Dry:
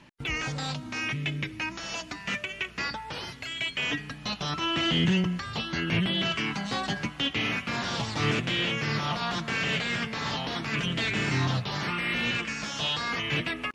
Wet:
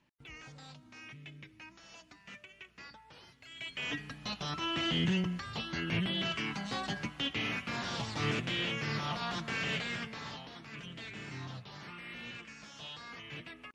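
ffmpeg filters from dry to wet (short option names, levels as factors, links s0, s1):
-af "volume=0.473,afade=t=in:st=3.41:d=0.58:silence=0.237137,afade=t=out:st=9.73:d=0.78:silence=0.298538"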